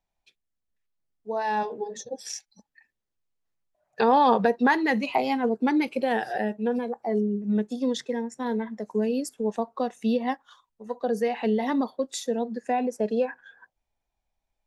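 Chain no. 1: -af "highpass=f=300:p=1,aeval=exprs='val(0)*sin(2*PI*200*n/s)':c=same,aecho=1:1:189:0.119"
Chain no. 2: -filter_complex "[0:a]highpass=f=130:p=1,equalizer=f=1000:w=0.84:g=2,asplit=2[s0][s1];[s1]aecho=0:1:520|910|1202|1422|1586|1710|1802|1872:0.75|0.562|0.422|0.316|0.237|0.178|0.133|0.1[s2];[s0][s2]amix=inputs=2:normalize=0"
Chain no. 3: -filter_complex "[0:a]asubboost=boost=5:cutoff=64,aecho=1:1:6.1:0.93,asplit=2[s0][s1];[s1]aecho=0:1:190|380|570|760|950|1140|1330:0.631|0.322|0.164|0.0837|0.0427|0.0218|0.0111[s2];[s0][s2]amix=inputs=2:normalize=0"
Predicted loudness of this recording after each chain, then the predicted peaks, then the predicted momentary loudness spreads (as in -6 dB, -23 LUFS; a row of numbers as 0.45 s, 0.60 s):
-31.5 LUFS, -23.5 LUFS, -23.5 LUFS; -9.5 dBFS, -5.5 dBFS, -4.5 dBFS; 12 LU, 11 LU, 13 LU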